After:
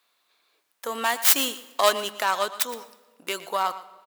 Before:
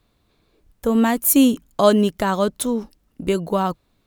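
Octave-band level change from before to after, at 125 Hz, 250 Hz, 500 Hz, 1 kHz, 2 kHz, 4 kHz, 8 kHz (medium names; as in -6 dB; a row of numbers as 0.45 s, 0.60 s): under -25 dB, -22.5 dB, -8.5 dB, -1.5 dB, +2.0 dB, +3.5 dB, -1.0 dB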